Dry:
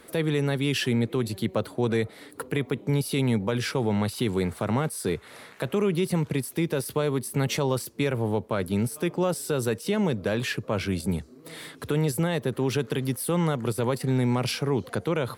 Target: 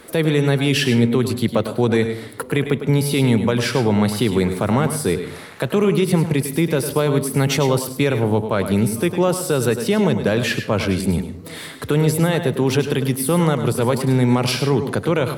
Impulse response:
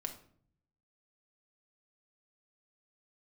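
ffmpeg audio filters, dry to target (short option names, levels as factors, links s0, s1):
-filter_complex "[0:a]asplit=2[s0][s1];[1:a]atrim=start_sample=2205,adelay=102[s2];[s1][s2]afir=irnorm=-1:irlink=0,volume=0.422[s3];[s0][s3]amix=inputs=2:normalize=0,volume=2.37"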